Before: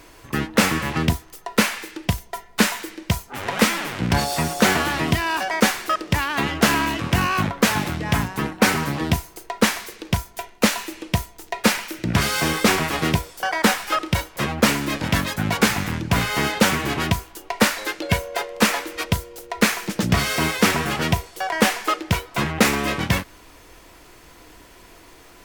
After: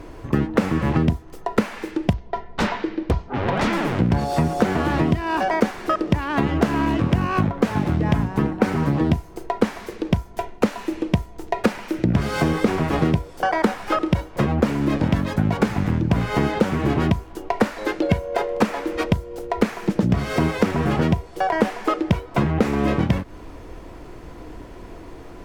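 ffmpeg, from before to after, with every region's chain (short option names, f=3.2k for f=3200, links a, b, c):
-filter_complex "[0:a]asettb=1/sr,asplit=3[a][b][c];[a]atrim=end=2.134[d];[b]atrim=start=2.13:end=3.73,asetpts=PTS-STARTPTS,afade=t=in:d=0.004:c=qsin,afade=t=out:st=1.596:d=0.004:c=qsin,lowpass=f=4.7k:w=0.5412,lowpass=f=4.7k:w=1.3066,aeval=exprs='0.133*(abs(mod(val(0)/0.133+3,4)-2)-1)':c=same[e];[c]atrim=start=3.726[f];[d][e]acrossfade=d=0.004:c1=hsin:c2=qsin[g];[g][f]acrossfade=d=0.004:c1=qsin:c2=hsin,tiltshelf=f=1.1k:g=8.5,acompressor=threshold=-20dB:ratio=6,highshelf=f=9.6k:g=-9,volume=4dB"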